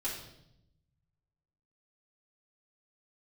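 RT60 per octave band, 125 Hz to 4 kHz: 1.9 s, 1.2 s, 0.90 s, 0.70 s, 0.65 s, 0.75 s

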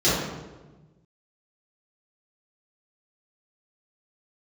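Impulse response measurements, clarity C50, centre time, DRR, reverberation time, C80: -1.5 dB, 83 ms, -12.0 dB, 1.2 s, 2.5 dB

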